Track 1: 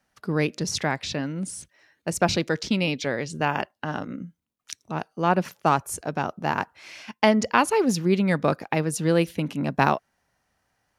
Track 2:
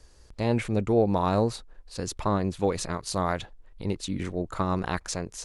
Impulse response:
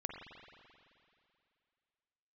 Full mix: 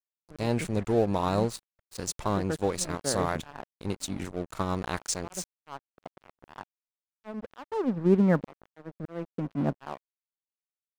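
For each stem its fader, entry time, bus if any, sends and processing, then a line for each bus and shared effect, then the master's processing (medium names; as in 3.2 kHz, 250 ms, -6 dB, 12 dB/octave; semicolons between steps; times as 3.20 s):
+1.5 dB, 0.00 s, no send, low-pass 1.4 kHz 24 dB/octave; slow attack 635 ms
-1.5 dB, 0.00 s, no send, peaking EQ 8.2 kHz +8.5 dB 1.4 oct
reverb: none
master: crossover distortion -39 dBFS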